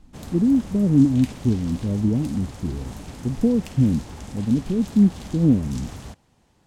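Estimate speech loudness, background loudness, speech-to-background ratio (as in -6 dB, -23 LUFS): -21.5 LUFS, -38.5 LUFS, 17.0 dB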